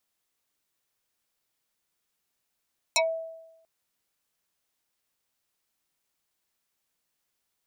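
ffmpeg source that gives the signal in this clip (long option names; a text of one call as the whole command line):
ffmpeg -f lavfi -i "aevalsrc='0.126*pow(10,-3*t/0.96)*sin(2*PI*652*t+6.3*pow(10,-3*t/0.14)*sin(2*PI*2.46*652*t))':duration=0.69:sample_rate=44100" out.wav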